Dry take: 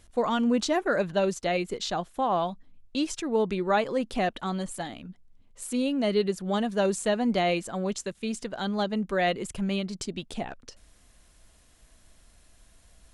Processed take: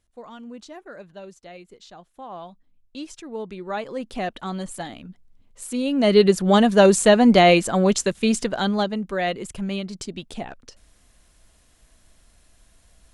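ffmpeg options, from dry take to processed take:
-af "volume=11.5dB,afade=t=in:st=1.96:d=1.05:silence=0.398107,afade=t=in:st=3.55:d=1.2:silence=0.354813,afade=t=in:st=5.83:d=0.44:silence=0.334965,afade=t=out:st=8.33:d=0.66:silence=0.298538"

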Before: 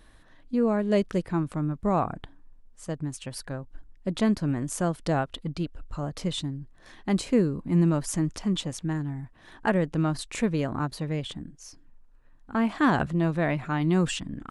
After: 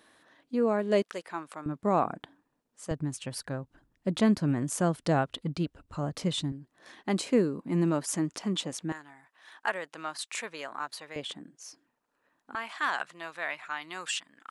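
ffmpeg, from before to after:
-af "asetnsamples=n=441:p=0,asendcmd='1.02 highpass f 700;1.66 highpass f 220;2.91 highpass f 96;6.52 highpass f 240;8.92 highpass f 930;11.16 highpass f 350;12.55 highpass f 1200',highpass=280"

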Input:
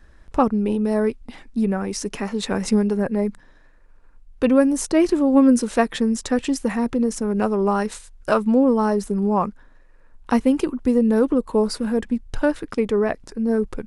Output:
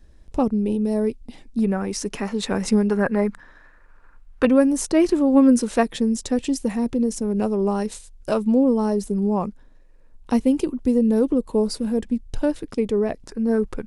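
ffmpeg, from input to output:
-af "asetnsamples=n=441:p=0,asendcmd='1.59 equalizer g -1;2.9 equalizer g 9.5;4.45 equalizer g -2.5;5.83 equalizer g -10.5;13.26 equalizer g 0.5',equalizer=f=1.4k:t=o:w=1.5:g=-13"

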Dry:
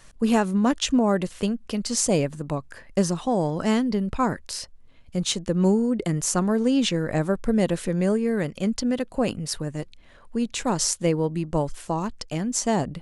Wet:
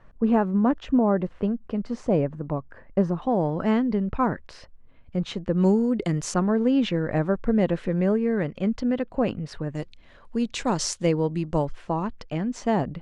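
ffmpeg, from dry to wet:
-af "asetnsamples=n=441:p=0,asendcmd='3.22 lowpass f 2100;5.58 lowpass f 4900;6.34 lowpass f 2400;9.75 lowpass f 5600;11.65 lowpass f 2600',lowpass=1.3k"

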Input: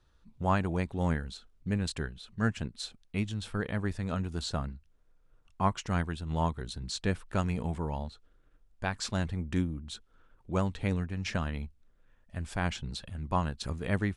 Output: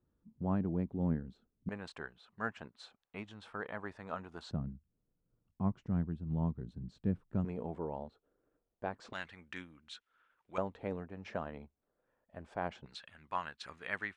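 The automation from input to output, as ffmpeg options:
-af "asetnsamples=n=441:p=0,asendcmd='1.69 bandpass f 950;4.51 bandpass f 180;7.45 bandpass f 470;9.13 bandpass f 2000;10.58 bandpass f 600;12.86 bandpass f 1800',bandpass=f=230:t=q:w=1.2:csg=0"

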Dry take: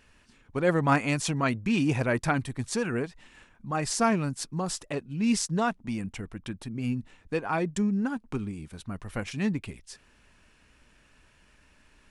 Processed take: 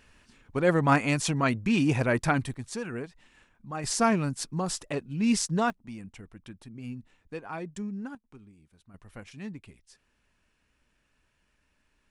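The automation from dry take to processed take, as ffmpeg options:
-af "asetnsamples=n=441:p=0,asendcmd='2.54 volume volume -6dB;3.84 volume volume 0.5dB;5.7 volume volume -9dB;8.15 volume volume -19dB;8.94 volume volume -11.5dB',volume=1dB"

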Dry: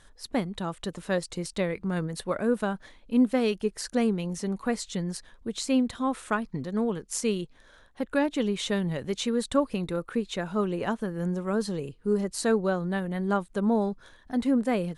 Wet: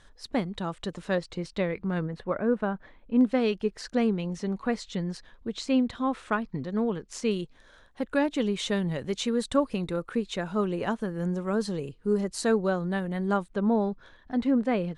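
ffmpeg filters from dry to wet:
-af "asetnsamples=n=441:p=0,asendcmd='1.15 lowpass f 4000;2.06 lowpass f 2000;3.21 lowpass f 4700;7.31 lowpass f 9100;13.49 lowpass f 4000',lowpass=6.7k"

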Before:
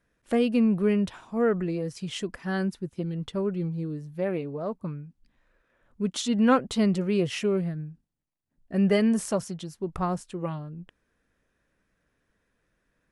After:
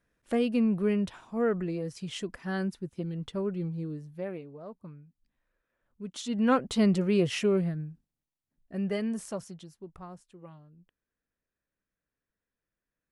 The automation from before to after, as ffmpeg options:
-af "volume=8.5dB,afade=t=out:st=3.92:d=0.54:silence=0.375837,afade=t=in:st=6.05:d=0.84:silence=0.251189,afade=t=out:st=7.62:d=1.21:silence=0.354813,afade=t=out:st=9.54:d=0.48:silence=0.398107"

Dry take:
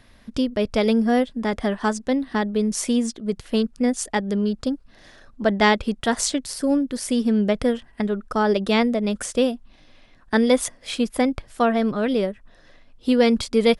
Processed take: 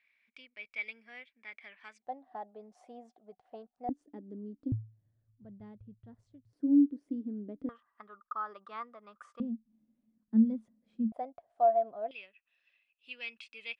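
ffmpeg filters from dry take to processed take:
-af "asetnsamples=n=441:p=0,asendcmd='2.02 bandpass f 740;3.89 bandpass f 290;4.72 bandpass f 110;6.53 bandpass f 290;7.69 bandpass f 1200;9.4 bandpass f 220;11.12 bandpass f 690;12.11 bandpass f 2600',bandpass=f=2.3k:t=q:w=17:csg=0"

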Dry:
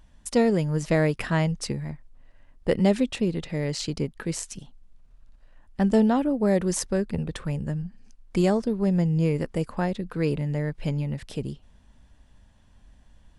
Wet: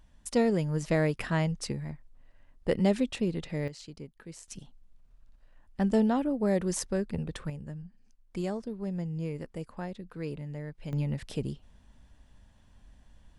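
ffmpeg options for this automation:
-af "asetnsamples=n=441:p=0,asendcmd='3.68 volume volume -16dB;4.48 volume volume -5dB;7.5 volume volume -11.5dB;10.93 volume volume -2dB',volume=-4.5dB"

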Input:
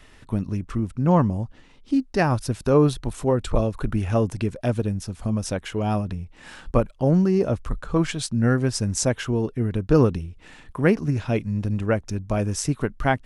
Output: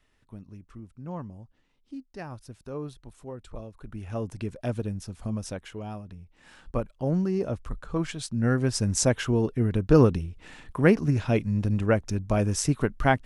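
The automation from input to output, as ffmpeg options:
-af "volume=8.5dB,afade=t=in:st=3.81:d=0.79:silence=0.251189,afade=t=out:st=5.33:d=0.66:silence=0.354813,afade=t=in:st=5.99:d=1.15:silence=0.375837,afade=t=in:st=8.22:d=0.74:silence=0.473151"

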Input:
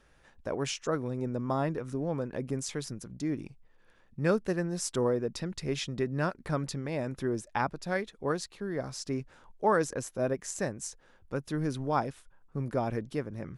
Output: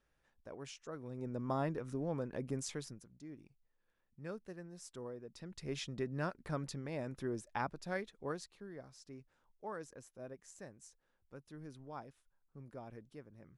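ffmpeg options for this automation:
-af "volume=4.5dB,afade=t=in:st=0.94:d=0.55:silence=0.316228,afade=t=out:st=2.69:d=0.41:silence=0.237137,afade=t=in:st=5.31:d=0.46:silence=0.298538,afade=t=out:st=8.03:d=0.88:silence=0.281838"

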